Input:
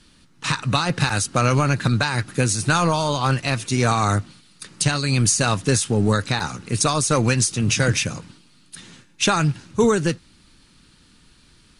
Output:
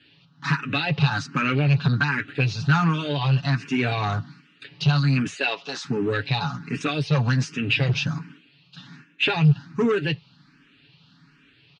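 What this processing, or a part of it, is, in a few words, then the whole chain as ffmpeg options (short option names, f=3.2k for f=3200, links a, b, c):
barber-pole phaser into a guitar amplifier: -filter_complex "[0:a]aecho=1:1:7.1:0.74,asplit=2[a][b];[b]afreqshift=1.3[c];[a][c]amix=inputs=2:normalize=1,asoftclip=type=tanh:threshold=-14.5dB,highpass=110,equalizer=f=150:t=q:w=4:g=7,equalizer=f=220:t=q:w=4:g=4,equalizer=f=570:t=q:w=4:g=-5,equalizer=f=1.6k:t=q:w=4:g=5,equalizer=f=2.7k:t=q:w=4:g=7,lowpass=f=4.4k:w=0.5412,lowpass=f=4.4k:w=1.3066,asettb=1/sr,asplit=3[d][e][f];[d]atrim=end=5.364[g];[e]atrim=start=5.36:end=5.85,asetpts=PTS-STARTPTS,afade=t=in:d=0.004:c=qsin,afade=t=out:st=0.486:d=0.004:c=qsin,highpass=f=330:w=0.5412,highpass=f=330:w=1.3066[h];[f]atrim=start=5.846[i];[g][h]acrossfade=d=0.004:c1=hsin:c2=qsin[j];[j][i]acrossfade=d=0.004:c1=qsin:c2=hsin,volume=-1.5dB"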